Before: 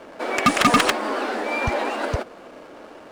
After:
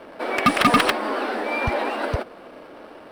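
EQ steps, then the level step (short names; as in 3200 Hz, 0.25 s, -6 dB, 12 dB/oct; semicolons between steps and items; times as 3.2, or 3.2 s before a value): bell 6800 Hz -14.5 dB 0.37 oct; 0.0 dB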